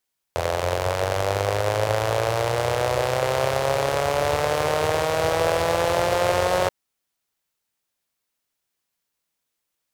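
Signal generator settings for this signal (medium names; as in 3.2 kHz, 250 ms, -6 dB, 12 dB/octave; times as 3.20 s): four-cylinder engine model, changing speed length 6.33 s, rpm 2500, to 5500, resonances 99/540 Hz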